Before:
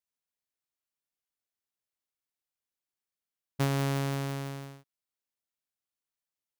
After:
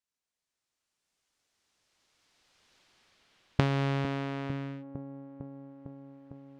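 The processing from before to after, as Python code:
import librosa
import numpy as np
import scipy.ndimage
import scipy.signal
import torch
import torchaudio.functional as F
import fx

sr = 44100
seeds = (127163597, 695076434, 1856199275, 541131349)

y = fx.recorder_agc(x, sr, target_db=-29.0, rise_db_per_s=11.0, max_gain_db=30)
y = fx.filter_sweep_lowpass(y, sr, from_hz=7500.0, to_hz=2200.0, start_s=1.13, end_s=5.04, q=1.0)
y = fx.echo_wet_lowpass(y, sr, ms=453, feedback_pct=75, hz=580.0, wet_db=-11.0)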